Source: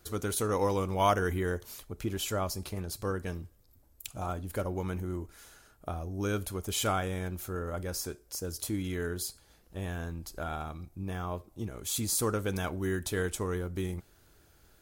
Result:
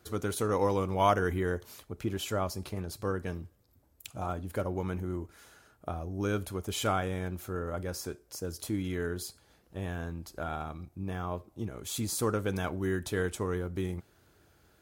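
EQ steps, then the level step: HPF 73 Hz; high shelf 4100 Hz -7 dB; +1.0 dB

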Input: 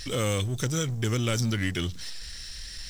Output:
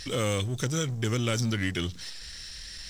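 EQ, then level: low shelf 60 Hz -7.5 dB; high shelf 11000 Hz -7 dB; 0.0 dB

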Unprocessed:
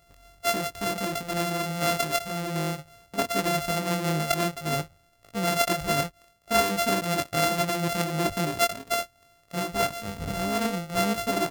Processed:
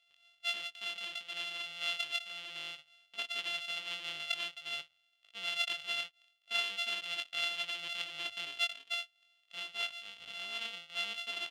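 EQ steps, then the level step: band-pass 3100 Hz, Q 6.4; +4.5 dB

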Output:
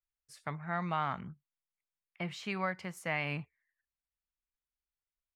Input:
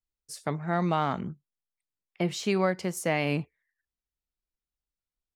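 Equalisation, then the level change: EQ curve 130 Hz 0 dB, 370 Hz -10 dB, 1100 Hz +3 dB, 2200 Hz +4 dB, 5900 Hz -8 dB; -6.5 dB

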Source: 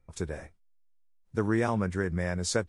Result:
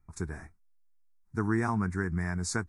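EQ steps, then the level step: bell 490 Hz +4 dB 2.3 oct; fixed phaser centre 1300 Hz, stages 4; 0.0 dB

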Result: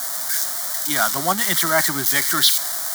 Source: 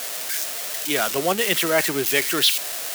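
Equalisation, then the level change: HPF 91 Hz; dynamic EQ 3000 Hz, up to +5 dB, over -32 dBFS, Q 0.76; fixed phaser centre 1100 Hz, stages 4; +5.0 dB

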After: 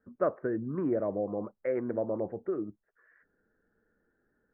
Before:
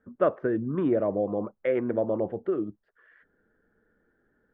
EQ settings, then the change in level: steep low-pass 2100 Hz 36 dB/oct; -5.0 dB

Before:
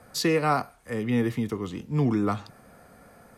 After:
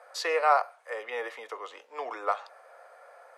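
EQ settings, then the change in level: elliptic high-pass 540 Hz, stop band 70 dB; LPF 10000 Hz 12 dB/oct; high shelf 2800 Hz -12 dB; +4.5 dB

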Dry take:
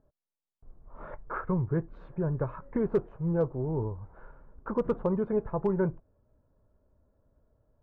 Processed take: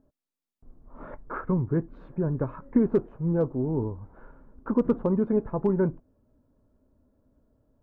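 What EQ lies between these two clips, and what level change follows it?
bell 260 Hz +11.5 dB 0.68 oct; 0.0 dB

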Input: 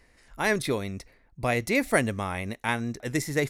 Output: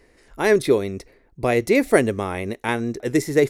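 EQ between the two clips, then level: bell 390 Hz +11.5 dB 0.91 oct; +2.0 dB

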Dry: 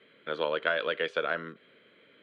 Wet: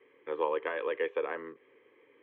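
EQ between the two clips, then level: LPF 1300 Hz 12 dB/oct; low shelf 280 Hz -10 dB; fixed phaser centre 950 Hz, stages 8; +5.5 dB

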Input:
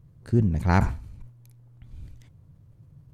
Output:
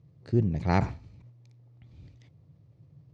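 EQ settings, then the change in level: speaker cabinet 120–5500 Hz, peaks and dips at 220 Hz -6 dB, 1000 Hz -6 dB, 1500 Hz -9 dB, 3100 Hz -3 dB; 0.0 dB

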